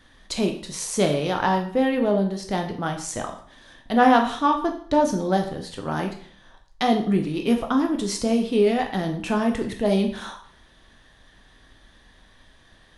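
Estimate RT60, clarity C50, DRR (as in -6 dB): 0.55 s, 9.0 dB, 3.0 dB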